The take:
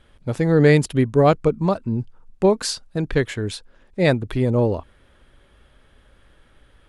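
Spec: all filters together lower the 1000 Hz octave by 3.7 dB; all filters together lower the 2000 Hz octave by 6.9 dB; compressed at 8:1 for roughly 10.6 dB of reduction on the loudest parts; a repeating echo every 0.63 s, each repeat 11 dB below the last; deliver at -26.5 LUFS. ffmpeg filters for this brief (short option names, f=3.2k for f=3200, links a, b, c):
-af "equalizer=f=1k:t=o:g=-4,equalizer=f=2k:t=o:g=-7,acompressor=threshold=-22dB:ratio=8,aecho=1:1:630|1260|1890:0.282|0.0789|0.0221,volume=2dB"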